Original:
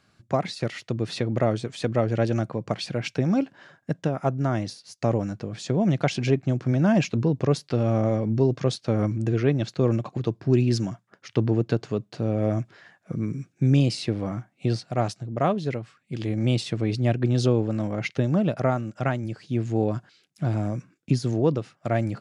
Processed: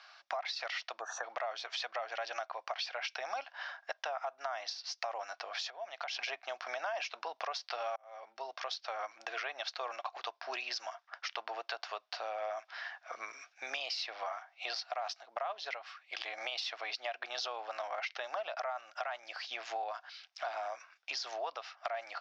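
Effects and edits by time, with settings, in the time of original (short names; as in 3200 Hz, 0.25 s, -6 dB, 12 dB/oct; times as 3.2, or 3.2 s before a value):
1–1.24 spectral gain 1800–5700 Hz -30 dB
5.55–6.19 compressor 12:1, threshold -35 dBFS
7.96–9.53 fade in
whole clip: Chebyshev band-pass 690–5600 Hz, order 4; limiter -26 dBFS; compressor 4:1, threshold -48 dBFS; gain +10.5 dB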